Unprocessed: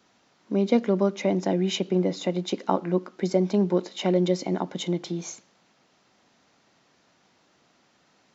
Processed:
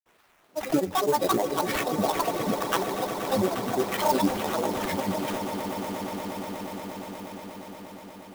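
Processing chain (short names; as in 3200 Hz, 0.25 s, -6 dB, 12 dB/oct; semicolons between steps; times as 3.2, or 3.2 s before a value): resonant low shelf 310 Hz -11.5 dB, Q 1.5; in parallel at 0 dB: limiter -22 dBFS, peak gain reduction 15 dB; on the sum: chorus 0.38 Hz, delay 17 ms, depth 7.4 ms; grains, pitch spread up and down by 12 st; decimation with a swept rate 8×, swing 60% 3.4 Hz; on a send: swelling echo 0.119 s, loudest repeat 8, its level -15 dB; on the sum: clock jitter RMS 0.027 ms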